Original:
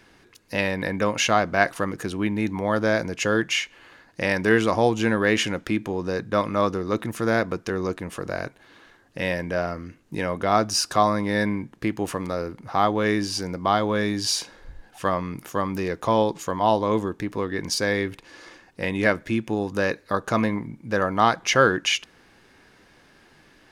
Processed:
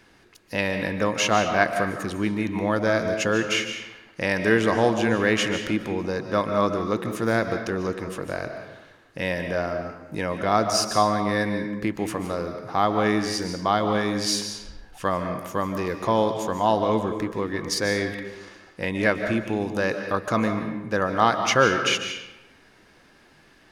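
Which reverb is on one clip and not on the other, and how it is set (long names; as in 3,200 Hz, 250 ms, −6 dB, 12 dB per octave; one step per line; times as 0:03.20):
comb and all-pass reverb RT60 0.98 s, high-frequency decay 0.75×, pre-delay 105 ms, DRR 6.5 dB
level −1 dB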